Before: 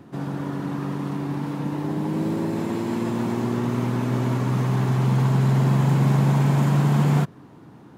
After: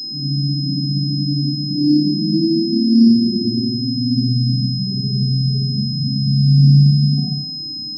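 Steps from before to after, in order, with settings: high-pass 75 Hz 24 dB/octave; band-stop 540 Hz, Q 12; peak limiter -16 dBFS, peak gain reduction 6 dB; loudest bins only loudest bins 4; on a send: flutter echo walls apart 9.8 m, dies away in 0.77 s; on the sum: Schroeder reverb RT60 0.56 s, combs from 27 ms, DRR -9.5 dB; class-D stage that switches slowly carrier 5.1 kHz

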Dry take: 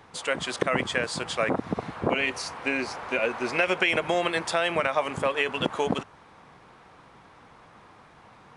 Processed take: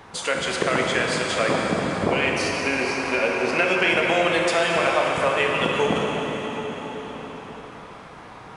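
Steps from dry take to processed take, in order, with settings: plate-style reverb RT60 4.3 s, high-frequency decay 0.9×, DRR -1.5 dB; in parallel at +1 dB: compression, threshold -36 dBFS, peak gain reduction 17.5 dB

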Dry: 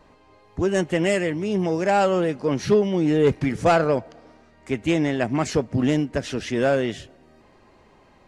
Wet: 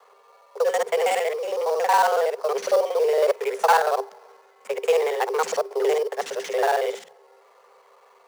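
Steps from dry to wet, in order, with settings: time reversed locally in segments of 46 ms; rippled Chebyshev high-pass 240 Hz, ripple 6 dB; treble shelf 6.2 kHz +10.5 dB; in parallel at -5 dB: sample-rate reducer 5 kHz, jitter 20%; on the sum: frequency shift +150 Hz

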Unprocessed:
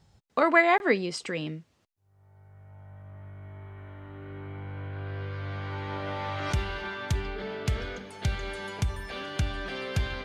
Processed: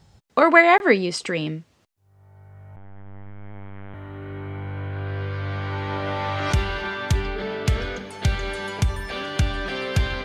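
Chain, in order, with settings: 2.76–3.94 s: LPC vocoder at 8 kHz pitch kept; trim +7 dB

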